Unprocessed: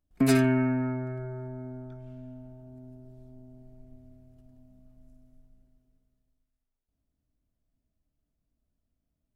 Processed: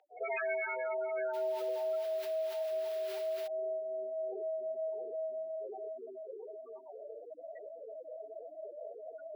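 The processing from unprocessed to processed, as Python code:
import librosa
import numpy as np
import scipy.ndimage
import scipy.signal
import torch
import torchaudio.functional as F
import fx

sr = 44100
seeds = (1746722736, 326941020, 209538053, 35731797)

y = fx.tracing_dist(x, sr, depth_ms=0.31)
y = fx.recorder_agc(y, sr, target_db=-17.0, rise_db_per_s=17.0, max_gain_db=30)
y = fx.chorus_voices(y, sr, voices=4, hz=0.72, base_ms=13, depth_ms=1.2, mix_pct=70)
y = fx.echo_feedback(y, sr, ms=670, feedback_pct=22, wet_db=-12.5)
y = fx.spec_topn(y, sr, count=16)
y = fx.peak_eq(y, sr, hz=970.0, db=-15.0, octaves=1.4)
y = fx.dmg_noise_colour(y, sr, seeds[0], colour='violet', level_db=-44.0, at=(1.33, 3.46), fade=0.02)
y = scipy.signal.sosfilt(scipy.signal.butter(12, 460.0, 'highpass', fs=sr, output='sos'), y)
y = fx.air_absorb(y, sr, metres=380.0)
y = fx.env_flatten(y, sr, amount_pct=70)
y = y * 10.0 ** (8.0 / 20.0)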